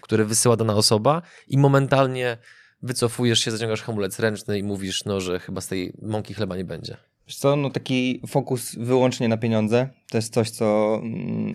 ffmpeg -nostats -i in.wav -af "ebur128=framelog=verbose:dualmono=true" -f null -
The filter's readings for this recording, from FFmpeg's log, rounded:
Integrated loudness:
  I:         -19.6 LUFS
  Threshold: -29.8 LUFS
Loudness range:
  LRA:         6.3 LU
  Threshold: -40.7 LUFS
  LRA low:   -23.9 LUFS
  LRA high:  -17.6 LUFS